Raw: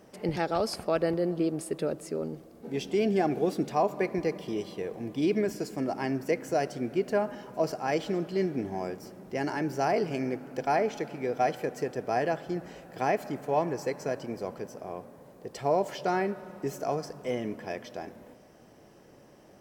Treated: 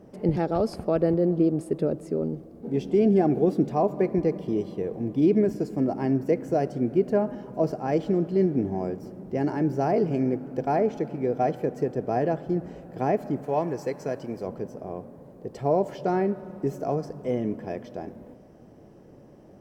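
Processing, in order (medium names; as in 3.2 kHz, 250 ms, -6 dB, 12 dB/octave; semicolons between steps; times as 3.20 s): tilt shelf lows +9 dB, about 840 Hz, from 13.43 s lows +3.5 dB, from 14.45 s lows +8 dB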